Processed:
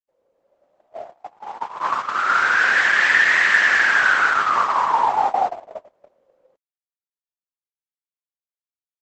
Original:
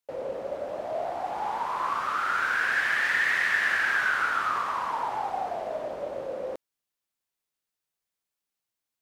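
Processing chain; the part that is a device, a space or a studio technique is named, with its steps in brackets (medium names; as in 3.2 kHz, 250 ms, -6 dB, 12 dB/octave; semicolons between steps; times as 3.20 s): 4.55–5.90 s: dynamic bell 890 Hz, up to +4 dB, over -39 dBFS, Q 2.2; video call (high-pass 150 Hz 6 dB/octave; level rider gain up to 6.5 dB; gate -21 dBFS, range -38 dB; trim +3.5 dB; Opus 12 kbps 48 kHz)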